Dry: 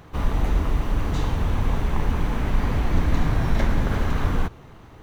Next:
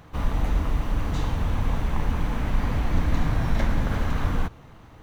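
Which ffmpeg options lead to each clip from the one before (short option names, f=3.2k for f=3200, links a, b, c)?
-af "equalizer=f=390:w=7:g=-7.5,volume=-2dB"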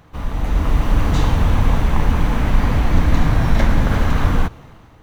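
-af "dynaudnorm=f=230:g=5:m=12dB"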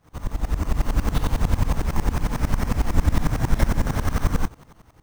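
-af "acrusher=samples=6:mix=1:aa=0.000001,aeval=exprs='val(0)*pow(10,-19*if(lt(mod(-11*n/s,1),2*abs(-11)/1000),1-mod(-11*n/s,1)/(2*abs(-11)/1000),(mod(-11*n/s,1)-2*abs(-11)/1000)/(1-2*abs(-11)/1000))/20)':c=same"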